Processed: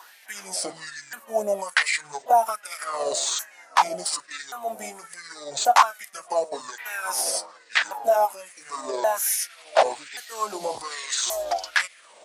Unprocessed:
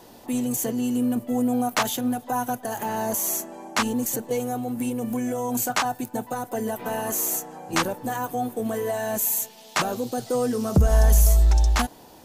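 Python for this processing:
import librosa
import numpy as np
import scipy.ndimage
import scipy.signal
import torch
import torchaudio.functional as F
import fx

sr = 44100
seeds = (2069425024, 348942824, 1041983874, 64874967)

y = fx.pitch_ramps(x, sr, semitones=-10.5, every_ms=1130)
y = fx.filter_lfo_highpass(y, sr, shape='sine', hz=1.2, low_hz=620.0, high_hz=2000.0, q=4.9)
y = F.gain(torch.from_numpy(y), 1.0).numpy()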